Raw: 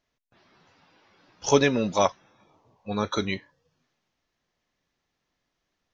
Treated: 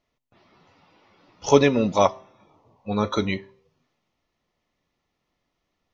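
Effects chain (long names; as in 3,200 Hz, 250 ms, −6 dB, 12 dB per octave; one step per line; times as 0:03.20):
high-shelf EQ 4,000 Hz −8.5 dB
notch filter 1,600 Hz, Q 5.4
hum removal 129.9 Hz, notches 9
on a send: convolution reverb RT60 0.55 s, pre-delay 3 ms, DRR 24 dB
on the sum: level +4 dB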